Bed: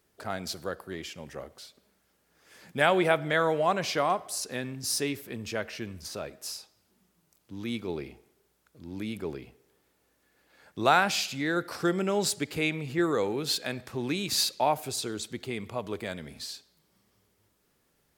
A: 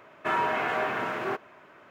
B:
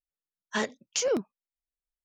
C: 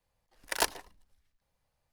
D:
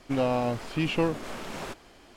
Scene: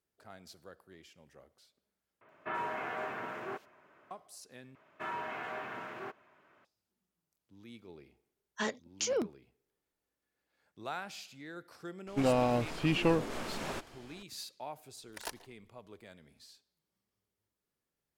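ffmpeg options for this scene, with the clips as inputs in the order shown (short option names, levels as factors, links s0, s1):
-filter_complex "[1:a]asplit=2[s0][s1];[0:a]volume=0.126[s2];[s0]acrossover=split=3600[s3][s4];[s4]adelay=80[s5];[s3][s5]amix=inputs=2:normalize=0[s6];[s1]equalizer=f=480:w=1.5:g=-2[s7];[s2]asplit=3[s8][s9][s10];[s8]atrim=end=2.214[s11];[s6]atrim=end=1.9,asetpts=PTS-STARTPTS,volume=0.316[s12];[s9]atrim=start=4.106:end=4.754[s13];[s7]atrim=end=1.9,asetpts=PTS-STARTPTS,volume=0.251[s14];[s10]atrim=start=6.646[s15];[2:a]atrim=end=2.04,asetpts=PTS-STARTPTS,volume=0.531,afade=t=in:d=0.004:c=hsin,afade=t=out:st=2.036:d=0.004:c=hsin,adelay=8050[s16];[4:a]atrim=end=2.16,asetpts=PTS-STARTPTS,volume=0.794,afade=t=in:d=0.004:c=hsin,afade=t=out:st=2.156:d=0.004:c=hsin,adelay=12070[s17];[3:a]atrim=end=1.92,asetpts=PTS-STARTPTS,volume=0.211,afade=t=in:d=0.004:c=hsin,afade=t=out:st=1.916:d=0.004:c=hsin,adelay=14650[s18];[s11][s12]acrossfade=d=0.004:c1=hsin:c2=hsin[s19];[s19][s13]acrossfade=d=0.004:c1=hsin:c2=hsin[s20];[s20][s14]acrossfade=d=0.004:c1=hsin:c2=hsin[s21];[s21][s15]acrossfade=d=0.004:c1=hsin:c2=hsin[s22];[s22][s16][s17][s18]amix=inputs=4:normalize=0"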